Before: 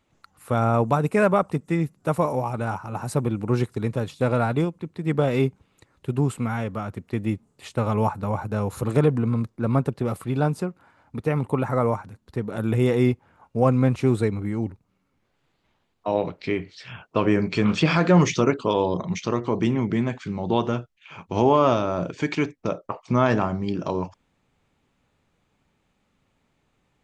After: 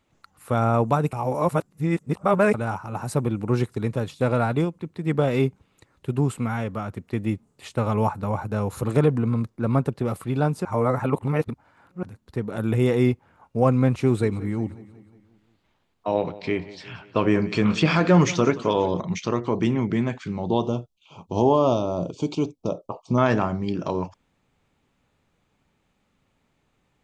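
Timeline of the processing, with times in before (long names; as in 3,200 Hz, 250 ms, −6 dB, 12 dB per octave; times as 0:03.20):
0:01.13–0:02.54: reverse
0:10.65–0:12.03: reverse
0:13.90–0:19.01: repeating echo 179 ms, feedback 54%, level −18 dB
0:20.48–0:23.18: Butterworth band-reject 1,800 Hz, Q 0.82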